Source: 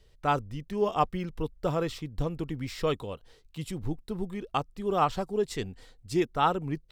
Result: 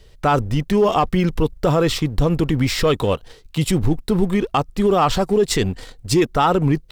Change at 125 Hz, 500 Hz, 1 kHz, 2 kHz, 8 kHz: +14.5, +11.5, +8.5, +12.0, +17.5 decibels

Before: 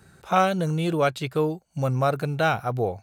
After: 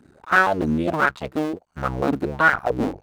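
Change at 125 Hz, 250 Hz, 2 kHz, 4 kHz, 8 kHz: −5.0, +4.0, +11.0, −2.0, −2.5 decibels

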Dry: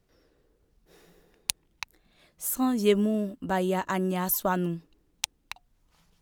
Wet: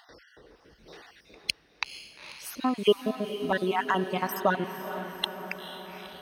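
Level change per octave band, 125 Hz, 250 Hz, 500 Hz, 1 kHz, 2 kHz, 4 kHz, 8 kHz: −5.5, −4.5, +0.5, +2.5, +4.5, +4.0, −10.5 decibels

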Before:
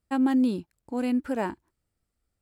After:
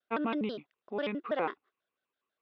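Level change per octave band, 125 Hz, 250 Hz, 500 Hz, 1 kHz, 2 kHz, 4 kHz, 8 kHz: −6.5 dB, −12.0 dB, −1.0 dB, −2.5 dB, −1.0 dB, +0.5 dB, can't be measured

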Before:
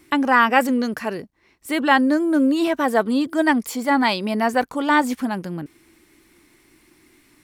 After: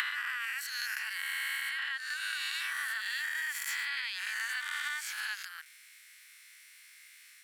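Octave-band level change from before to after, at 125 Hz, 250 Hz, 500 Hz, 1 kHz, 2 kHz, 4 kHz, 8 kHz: below −40 dB, below −40 dB, below −40 dB, −25.5 dB, −8.0 dB, −5.5 dB, −3.5 dB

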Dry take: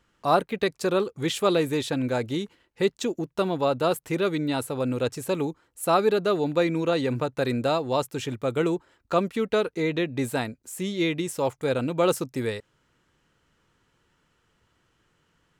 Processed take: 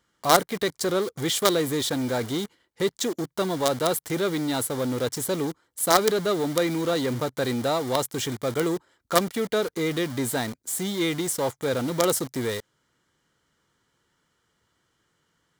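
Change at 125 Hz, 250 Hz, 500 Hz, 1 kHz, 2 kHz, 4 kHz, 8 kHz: −1.0, −0.5, −0.5, +1.0, +1.0, +4.5, +9.5 decibels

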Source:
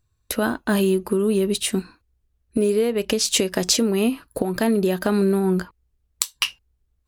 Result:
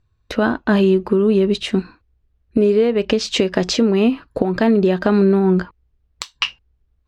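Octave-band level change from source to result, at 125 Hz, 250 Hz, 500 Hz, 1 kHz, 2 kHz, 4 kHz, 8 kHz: +5.5, +5.5, +5.0, +4.5, +3.5, +0.5, −9.0 decibels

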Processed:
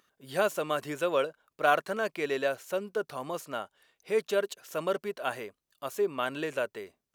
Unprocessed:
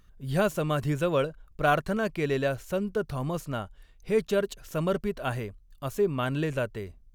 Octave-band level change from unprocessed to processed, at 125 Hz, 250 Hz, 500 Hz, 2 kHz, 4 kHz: −17.0, −8.5, −1.5, 0.0, 0.0 decibels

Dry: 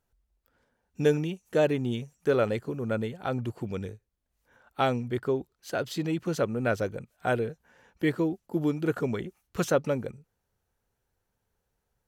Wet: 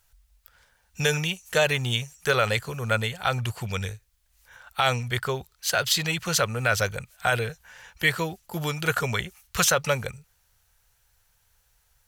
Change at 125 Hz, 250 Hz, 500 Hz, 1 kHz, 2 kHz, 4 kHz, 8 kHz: +4.0, −5.5, −1.0, +6.0, +11.5, +15.5, +17.0 decibels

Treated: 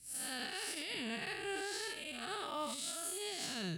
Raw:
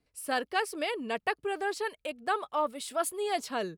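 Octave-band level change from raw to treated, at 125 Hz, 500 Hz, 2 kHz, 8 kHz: can't be measured, −12.5 dB, −7.5 dB, +0.5 dB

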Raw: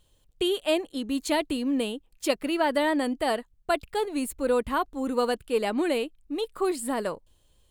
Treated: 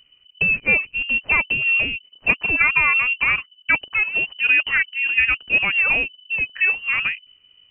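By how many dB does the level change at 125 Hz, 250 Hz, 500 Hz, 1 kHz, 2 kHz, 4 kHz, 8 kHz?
can't be measured, −11.0 dB, −12.0 dB, −1.0 dB, +20.0 dB, +5.0 dB, below −40 dB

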